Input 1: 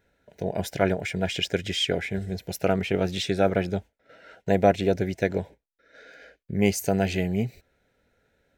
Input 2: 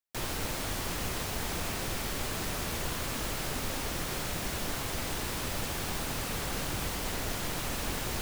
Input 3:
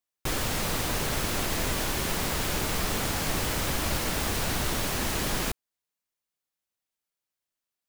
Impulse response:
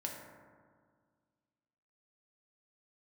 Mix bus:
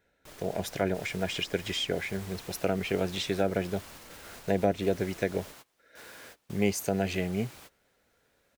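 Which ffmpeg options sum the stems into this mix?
-filter_complex "[0:a]volume=0.794,asplit=2[s0][s1];[1:a]highpass=f=240:p=1,adelay=800,volume=0.188[s2];[2:a]alimiter=level_in=1.33:limit=0.0631:level=0:latency=1,volume=0.75,volume=0.224[s3];[s1]apad=whole_len=401888[s4];[s2][s4]sidechaingate=range=0.0631:threshold=0.00224:ratio=16:detection=peak[s5];[s0][s5][s3]amix=inputs=3:normalize=0,lowshelf=f=230:g=-5.5,acrossover=split=460[s6][s7];[s7]acompressor=threshold=0.0355:ratio=5[s8];[s6][s8]amix=inputs=2:normalize=0"

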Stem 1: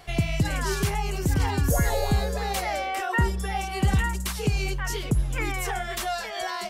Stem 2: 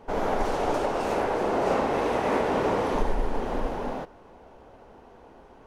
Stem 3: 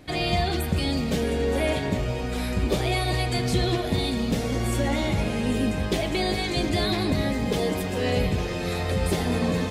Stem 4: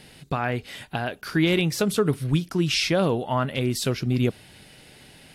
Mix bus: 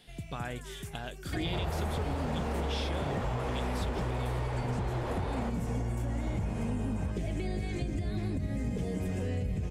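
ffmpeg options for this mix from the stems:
-filter_complex "[0:a]volume=0.141[s0];[1:a]asplit=2[s1][s2];[s2]highpass=f=720:p=1,volume=50.1,asoftclip=type=tanh:threshold=0.251[s3];[s1][s3]amix=inputs=2:normalize=0,lowpass=f=1700:p=1,volume=0.501,adelay=1450,volume=0.211[s4];[2:a]acrossover=split=180[s5][s6];[s6]acompressor=threshold=0.0178:ratio=6[s7];[s5][s7]amix=inputs=2:normalize=0,equalizer=f=6800:w=1:g=6.5,acrossover=split=4000[s8][s9];[s9]acompressor=threshold=0.00158:ratio=4:attack=1:release=60[s10];[s8][s10]amix=inputs=2:normalize=0,adelay=1250,volume=1.33[s11];[3:a]equalizer=f=3400:w=5.4:g=12,volume=0.224[s12];[s0][s11]amix=inputs=2:normalize=0,equalizer=f=1000:t=o:w=1:g=-7,equalizer=f=4000:t=o:w=1:g=-11,equalizer=f=8000:t=o:w=1:g=5,alimiter=limit=0.119:level=0:latency=1:release=122,volume=1[s13];[s4][s12][s13]amix=inputs=3:normalize=0,acompressor=threshold=0.0355:ratio=6"

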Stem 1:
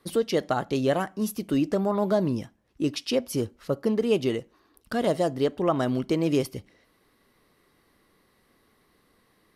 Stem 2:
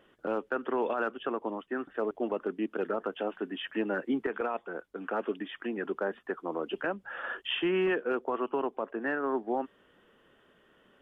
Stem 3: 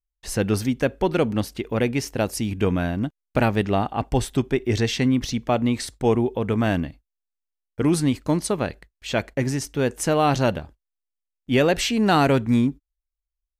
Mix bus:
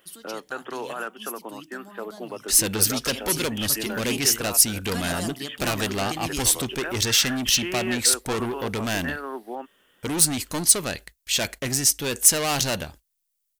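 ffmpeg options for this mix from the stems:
-filter_complex "[0:a]equalizer=f=490:t=o:w=0.57:g=-14,bandreject=f=63.32:t=h:w=4,bandreject=f=126.64:t=h:w=4,bandreject=f=189.96:t=h:w=4,bandreject=f=253.28:t=h:w=4,bandreject=f=316.6:t=h:w=4,bandreject=f=379.92:t=h:w=4,bandreject=f=443.24:t=h:w=4,bandreject=f=506.56:t=h:w=4,bandreject=f=569.88:t=h:w=4,bandreject=f=633.2:t=h:w=4,bandreject=f=696.52:t=h:w=4,bandreject=f=759.84:t=h:w=4,bandreject=f=823.16:t=h:w=4,bandreject=f=886.48:t=h:w=4,bandreject=f=949.8:t=h:w=4,bandreject=f=1013.12:t=h:w=4,bandreject=f=1076.44:t=h:w=4,volume=0.398,afade=t=in:st=2.75:d=0.56:silence=0.266073[s0];[1:a]volume=0.562[s1];[2:a]asoftclip=type=tanh:threshold=0.075,adelay=2250,volume=0.75[s2];[s0][s1][s2]amix=inputs=3:normalize=0,crystalizer=i=8:c=0"

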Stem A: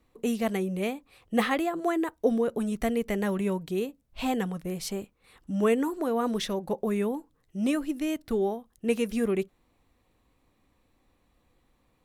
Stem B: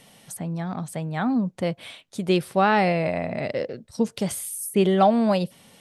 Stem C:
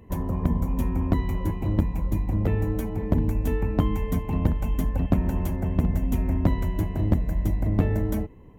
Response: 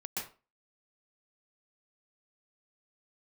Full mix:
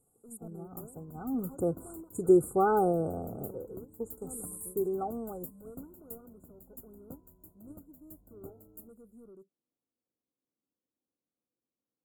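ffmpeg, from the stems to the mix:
-filter_complex "[0:a]highpass=240,equalizer=f=6800:t=o:w=2.3:g=-8.5,asoftclip=type=tanh:threshold=0.0422,volume=0.266[s0];[1:a]aecho=1:1:2.5:0.73,afade=t=in:st=1.27:d=0.24:silence=0.316228,afade=t=out:st=2.84:d=0.78:silence=0.266073,asplit=2[s1][s2];[2:a]aemphasis=mode=production:type=riaa,aeval=exprs='val(0)+0.00398*(sin(2*PI*50*n/s)+sin(2*PI*2*50*n/s)/2+sin(2*PI*3*50*n/s)/3+sin(2*PI*4*50*n/s)/4+sin(2*PI*5*50*n/s)/5)':c=same,bass=f=250:g=-3,treble=f=4000:g=-4,adelay=650,volume=0.178[s3];[s2]apad=whole_len=531298[s4];[s0][s4]sidechaincompress=threshold=0.0282:ratio=8:attack=16:release=288[s5];[s5][s1][s3]amix=inputs=3:normalize=0,agate=range=0.447:threshold=0.00891:ratio=16:detection=peak,afftfilt=real='re*(1-between(b*sr/4096,1500,6800))':imag='im*(1-between(b*sr/4096,1500,6800))':win_size=4096:overlap=0.75,equalizer=f=1000:w=1:g=-13"

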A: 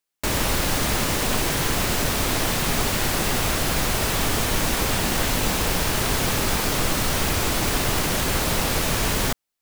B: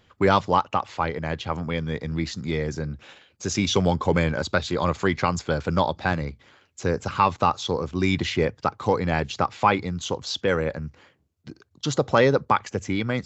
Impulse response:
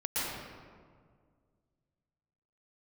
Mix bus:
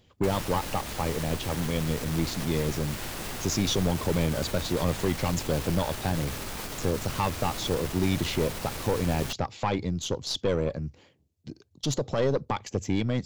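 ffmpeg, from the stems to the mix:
-filter_complex "[0:a]alimiter=limit=0.158:level=0:latency=1:release=108,volume=0.398[s0];[1:a]equalizer=f=1400:w=1.1:g=-12.5,alimiter=limit=0.2:level=0:latency=1:release=170,volume=1.26[s1];[s0][s1]amix=inputs=2:normalize=0,aeval=exprs='(tanh(7.94*val(0)+0.45)-tanh(0.45))/7.94':c=same"

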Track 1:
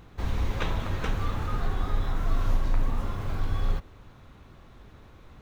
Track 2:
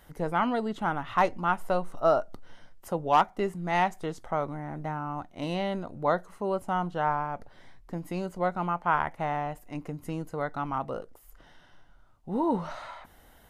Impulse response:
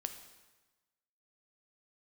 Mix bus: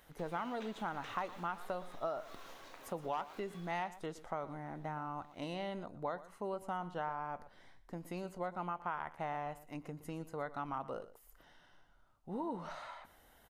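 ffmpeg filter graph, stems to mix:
-filter_complex "[0:a]highpass=560,equalizer=f=1100:t=o:w=1.6:g=-6,volume=0.376[s0];[1:a]acompressor=threshold=0.0398:ratio=10,volume=0.501,asplit=3[s1][s2][s3];[s2]volume=0.15[s4];[s3]apad=whole_len=238952[s5];[s0][s5]sidechaincompress=threshold=0.00562:ratio=8:attack=47:release=181[s6];[s4]aecho=0:1:118:1[s7];[s6][s1][s7]amix=inputs=3:normalize=0,lowshelf=f=240:g=-5.5"

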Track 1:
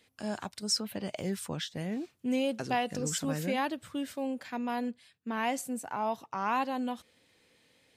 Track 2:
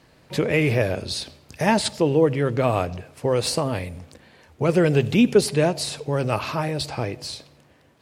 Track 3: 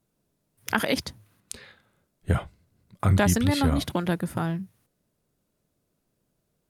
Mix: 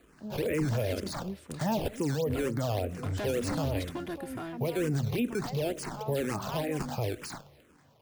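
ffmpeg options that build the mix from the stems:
-filter_complex "[0:a]lowpass=f=1400:p=1,acrossover=split=510[s0][s1];[s0]aeval=exprs='val(0)*(1-1/2+1/2*cos(2*PI*3.9*n/s))':c=same[s2];[s1]aeval=exprs='val(0)*(1-1/2-1/2*cos(2*PI*3.9*n/s))':c=same[s3];[s2][s3]amix=inputs=2:normalize=0,volume=0.75[s4];[1:a]acrusher=samples=13:mix=1:aa=0.000001:lfo=1:lforange=20.8:lforate=3.4,asplit=2[s5][s6];[s6]afreqshift=-2.1[s7];[s5][s7]amix=inputs=2:normalize=1,volume=0.841[s8];[2:a]aecho=1:1:2.9:0.71,asoftclip=type=tanh:threshold=0.0794,volume=0.398[s9];[s4][s8][s9]amix=inputs=3:normalize=0,acrossover=split=750|1600[s10][s11][s12];[s10]acompressor=threshold=0.0631:ratio=4[s13];[s11]acompressor=threshold=0.00501:ratio=4[s14];[s12]acompressor=threshold=0.0112:ratio=4[s15];[s13][s14][s15]amix=inputs=3:normalize=0,alimiter=limit=0.0841:level=0:latency=1:release=19"

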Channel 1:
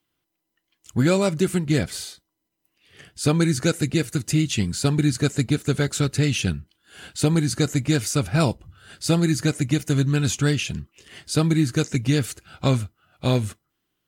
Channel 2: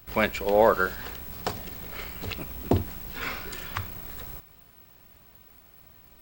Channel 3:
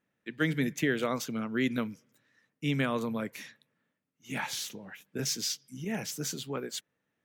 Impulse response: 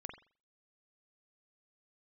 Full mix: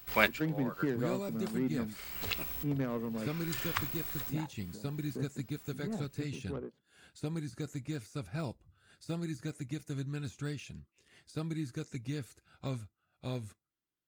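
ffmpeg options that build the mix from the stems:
-filter_complex "[0:a]deesser=0.65,bandreject=f=3000:w=12,volume=0.133[s0];[1:a]tiltshelf=f=890:g=-4.5,volume=0.708[s1];[2:a]equalizer=f=2900:t=o:w=2.7:g=-10,adynamicsmooth=sensitivity=3:basefreq=530,volume=0.708,asplit=2[s2][s3];[s3]apad=whole_len=274171[s4];[s1][s4]sidechaincompress=threshold=0.00141:ratio=4:attack=42:release=221[s5];[s0][s5][s2]amix=inputs=3:normalize=0"

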